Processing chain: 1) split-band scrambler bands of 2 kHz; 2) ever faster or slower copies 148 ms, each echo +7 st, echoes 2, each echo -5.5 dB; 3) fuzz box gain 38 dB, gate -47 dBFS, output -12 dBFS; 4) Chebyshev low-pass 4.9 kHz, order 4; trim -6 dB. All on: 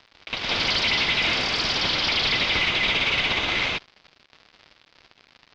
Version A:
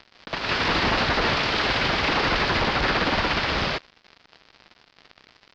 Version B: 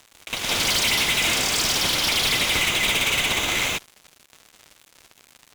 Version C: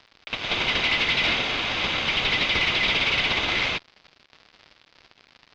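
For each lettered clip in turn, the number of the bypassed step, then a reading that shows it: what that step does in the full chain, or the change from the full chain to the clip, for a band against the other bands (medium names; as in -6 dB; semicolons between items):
1, 4 kHz band -10.5 dB; 4, 8 kHz band +15.0 dB; 2, 8 kHz band -3.0 dB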